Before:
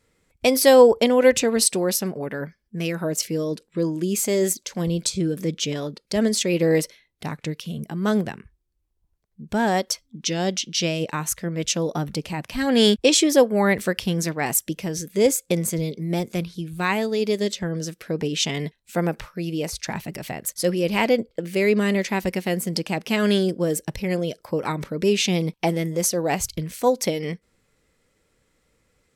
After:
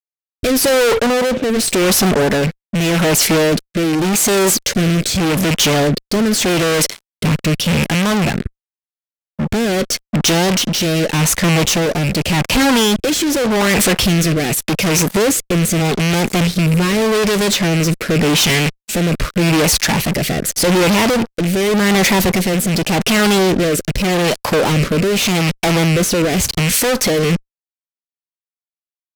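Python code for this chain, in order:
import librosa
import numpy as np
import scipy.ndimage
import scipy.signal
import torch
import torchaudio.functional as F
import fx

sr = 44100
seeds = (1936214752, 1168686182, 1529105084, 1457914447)

y = fx.rattle_buzz(x, sr, strikes_db=-33.0, level_db=-25.0)
y = fx.cheby1_bandpass(y, sr, low_hz=210.0, high_hz=670.0, order=2, at=(0.98, 1.55), fade=0.02)
y = fx.fuzz(y, sr, gain_db=43.0, gate_db=-48.0)
y = fx.rotary(y, sr, hz=0.85)
y = F.gain(torch.from_numpy(y), 2.0).numpy()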